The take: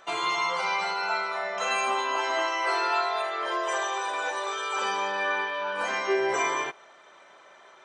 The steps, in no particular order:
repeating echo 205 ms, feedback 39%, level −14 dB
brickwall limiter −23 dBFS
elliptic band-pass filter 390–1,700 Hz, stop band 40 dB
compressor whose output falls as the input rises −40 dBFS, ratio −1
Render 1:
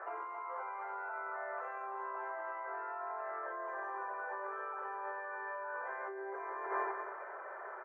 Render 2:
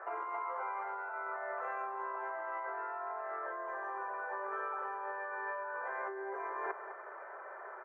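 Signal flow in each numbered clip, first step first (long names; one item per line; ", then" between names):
repeating echo, then brickwall limiter, then compressor whose output falls as the input rises, then elliptic band-pass filter
brickwall limiter, then elliptic band-pass filter, then compressor whose output falls as the input rises, then repeating echo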